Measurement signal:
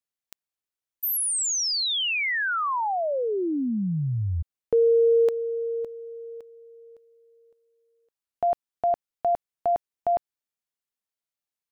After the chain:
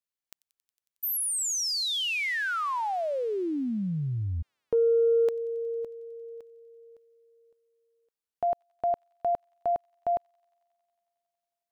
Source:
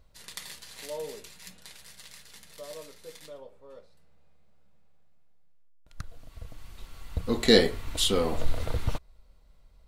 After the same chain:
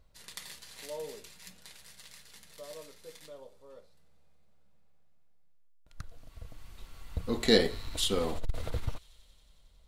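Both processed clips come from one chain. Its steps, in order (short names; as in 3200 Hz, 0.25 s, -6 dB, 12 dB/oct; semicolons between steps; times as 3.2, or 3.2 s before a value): thin delay 91 ms, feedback 84%, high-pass 2800 Hz, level -21.5 dB; core saturation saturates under 100 Hz; gain -3.5 dB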